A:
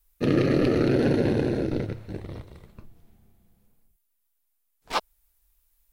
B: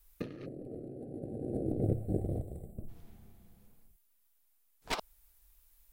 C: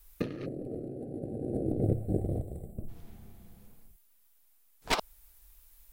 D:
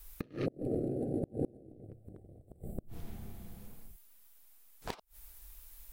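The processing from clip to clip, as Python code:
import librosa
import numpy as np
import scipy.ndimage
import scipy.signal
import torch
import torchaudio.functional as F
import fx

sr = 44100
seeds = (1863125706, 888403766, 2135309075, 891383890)

y1 = fx.over_compress(x, sr, threshold_db=-30.0, ratio=-0.5)
y1 = fx.spec_box(y1, sr, start_s=0.46, length_s=2.42, low_hz=800.0, high_hz=7500.0, gain_db=-26)
y1 = y1 * librosa.db_to_amplitude(-4.5)
y2 = fx.rider(y1, sr, range_db=4, speed_s=2.0)
y2 = y2 * librosa.db_to_amplitude(2.5)
y3 = 10.0 ** (-16.5 / 20.0) * (np.abs((y2 / 10.0 ** (-16.5 / 20.0) + 3.0) % 4.0 - 2.0) - 1.0)
y3 = fx.gate_flip(y3, sr, shuts_db=-27.0, range_db=-28)
y3 = y3 * librosa.db_to_amplitude(5.0)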